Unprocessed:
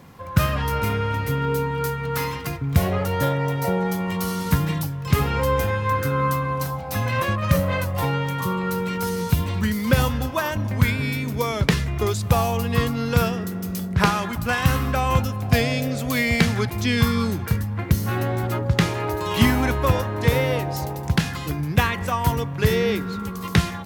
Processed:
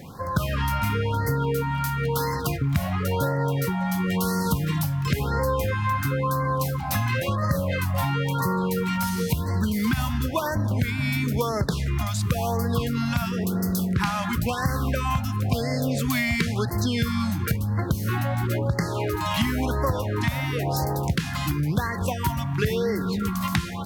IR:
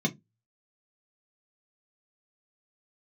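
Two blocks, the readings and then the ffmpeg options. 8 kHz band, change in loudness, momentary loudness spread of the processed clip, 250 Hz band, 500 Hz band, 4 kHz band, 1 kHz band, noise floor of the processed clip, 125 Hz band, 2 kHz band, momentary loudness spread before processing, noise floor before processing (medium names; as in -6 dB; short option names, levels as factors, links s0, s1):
-1.5 dB, -2.5 dB, 2 LU, -1.5 dB, -3.5 dB, -3.5 dB, -2.5 dB, -29 dBFS, -2.0 dB, -4.0 dB, 5 LU, -31 dBFS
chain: -af "acompressor=threshold=0.0501:ratio=5,asoftclip=type=tanh:threshold=0.178,afftfilt=real='re*(1-between(b*sr/1024,380*pow(3000/380,0.5+0.5*sin(2*PI*0.97*pts/sr))/1.41,380*pow(3000/380,0.5+0.5*sin(2*PI*0.97*pts/sr))*1.41))':imag='im*(1-between(b*sr/1024,380*pow(3000/380,0.5+0.5*sin(2*PI*0.97*pts/sr))/1.41,380*pow(3000/380,0.5+0.5*sin(2*PI*0.97*pts/sr))*1.41))':win_size=1024:overlap=0.75,volume=1.88"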